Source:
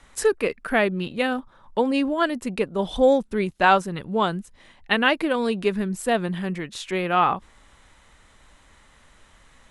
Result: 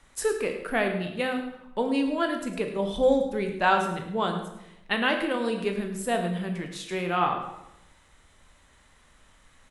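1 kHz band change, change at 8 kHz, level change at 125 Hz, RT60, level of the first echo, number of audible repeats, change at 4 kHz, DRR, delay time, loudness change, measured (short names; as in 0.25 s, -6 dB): -4.5 dB, -2.5 dB, -3.5 dB, 0.85 s, -13.0 dB, 1, -4.0 dB, 4.0 dB, 0.106 s, -4.0 dB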